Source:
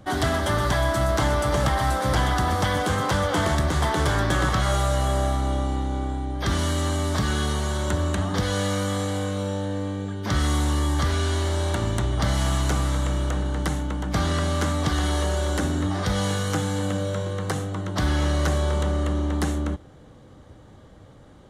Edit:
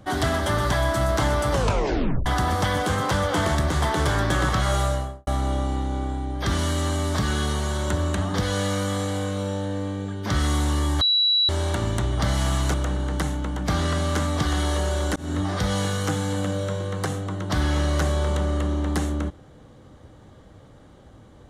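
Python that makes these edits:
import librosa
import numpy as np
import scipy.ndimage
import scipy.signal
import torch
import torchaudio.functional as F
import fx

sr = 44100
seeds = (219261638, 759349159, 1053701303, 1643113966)

y = fx.studio_fade_out(x, sr, start_s=4.82, length_s=0.45)
y = fx.edit(y, sr, fx.tape_stop(start_s=1.52, length_s=0.74),
    fx.bleep(start_s=11.01, length_s=0.48, hz=3920.0, db=-16.5),
    fx.cut(start_s=12.74, length_s=0.46),
    fx.fade_in_span(start_s=15.62, length_s=0.28, curve='qsin'), tone=tone)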